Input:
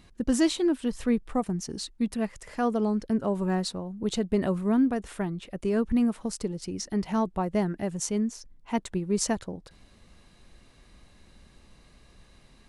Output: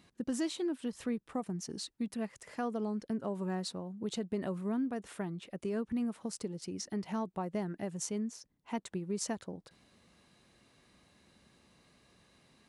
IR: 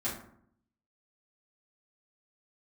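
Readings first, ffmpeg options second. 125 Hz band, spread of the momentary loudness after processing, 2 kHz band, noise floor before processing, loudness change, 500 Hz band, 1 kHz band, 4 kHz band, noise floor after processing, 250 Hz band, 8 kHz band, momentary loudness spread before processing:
−9.0 dB, 6 LU, −9.0 dB, −57 dBFS, −9.5 dB, −9.0 dB, −9.0 dB, −8.0 dB, −74 dBFS, −9.5 dB, −7.5 dB, 9 LU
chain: -af "highpass=120,acompressor=threshold=-29dB:ratio=2,volume=-5.5dB"

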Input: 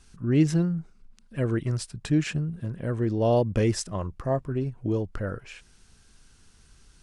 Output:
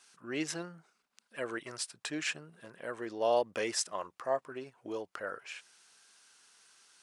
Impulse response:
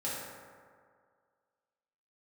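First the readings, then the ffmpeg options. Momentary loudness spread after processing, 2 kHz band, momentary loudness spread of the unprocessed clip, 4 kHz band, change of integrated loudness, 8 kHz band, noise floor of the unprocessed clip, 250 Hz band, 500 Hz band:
15 LU, 0.0 dB, 11 LU, 0.0 dB, −9.5 dB, 0.0 dB, −58 dBFS, −16.0 dB, −6.5 dB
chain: -af "highpass=700"

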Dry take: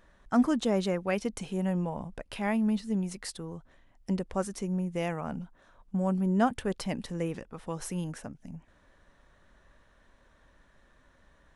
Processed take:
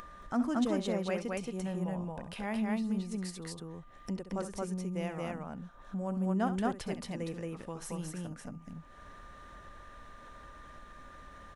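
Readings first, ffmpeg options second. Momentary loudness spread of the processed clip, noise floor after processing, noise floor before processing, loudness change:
21 LU, −53 dBFS, −63 dBFS, −4.5 dB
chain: -af "aeval=exprs='val(0)+0.00178*sin(2*PI*1200*n/s)':channel_layout=same,aecho=1:1:67.06|224.5:0.251|0.891,acompressor=mode=upward:threshold=-30dB:ratio=2.5,volume=-7dB"

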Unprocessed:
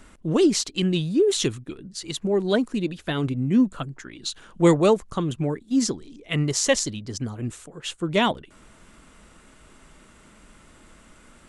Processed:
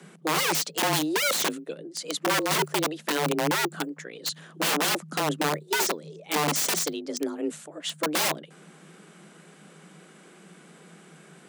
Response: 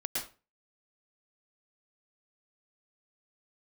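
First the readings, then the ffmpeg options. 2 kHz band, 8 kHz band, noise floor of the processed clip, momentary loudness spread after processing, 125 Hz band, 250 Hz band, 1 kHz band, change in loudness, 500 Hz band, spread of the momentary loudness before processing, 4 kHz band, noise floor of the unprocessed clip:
+4.5 dB, +1.5 dB, −53 dBFS, 11 LU, −10.0 dB, −8.5 dB, +3.5 dB, −3.0 dB, −6.5 dB, 14 LU, +1.5 dB, −53 dBFS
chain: -af "aeval=exprs='(mod(9.44*val(0)+1,2)-1)/9.44':channel_layout=same,afreqshift=150"

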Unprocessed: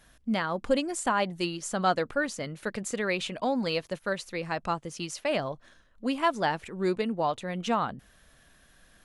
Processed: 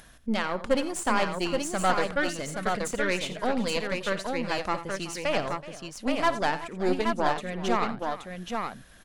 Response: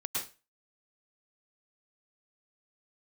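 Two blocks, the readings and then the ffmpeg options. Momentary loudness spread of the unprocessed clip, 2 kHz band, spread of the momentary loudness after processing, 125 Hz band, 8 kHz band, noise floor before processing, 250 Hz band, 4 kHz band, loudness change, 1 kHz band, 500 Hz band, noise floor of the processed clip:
8 LU, +3.0 dB, 8 LU, 0.0 dB, +2.0 dB, −61 dBFS, +1.0 dB, +2.0 dB, +1.5 dB, +2.0 dB, +1.5 dB, −51 dBFS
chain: -af "aeval=exprs='0.251*(cos(1*acos(clip(val(0)/0.251,-1,1)))-cos(1*PI/2))+0.0316*(cos(6*acos(clip(val(0)/0.251,-1,1)))-cos(6*PI/2))':channel_layout=same,acompressor=mode=upward:threshold=-46dB:ratio=2.5,aecho=1:1:55|87|376|825:0.133|0.211|0.15|0.596"

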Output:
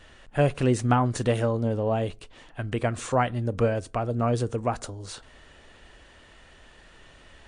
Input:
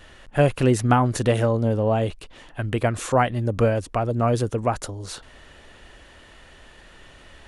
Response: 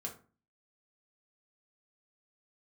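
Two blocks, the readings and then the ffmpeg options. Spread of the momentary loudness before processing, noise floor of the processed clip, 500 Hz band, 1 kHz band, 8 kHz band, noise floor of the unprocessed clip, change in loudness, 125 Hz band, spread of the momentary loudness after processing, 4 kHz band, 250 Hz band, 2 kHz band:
13 LU, −53 dBFS, −4.0 dB, −4.0 dB, −4.5 dB, −49 dBFS, −4.0 dB, −4.0 dB, 14 LU, −4.0 dB, −3.5 dB, −4.5 dB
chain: -filter_complex "[0:a]asplit=2[link_01][link_02];[1:a]atrim=start_sample=2205[link_03];[link_02][link_03]afir=irnorm=-1:irlink=0,volume=-15.5dB[link_04];[link_01][link_04]amix=inputs=2:normalize=0,volume=-4.5dB" -ar 22050 -c:a libmp3lame -b:a 56k

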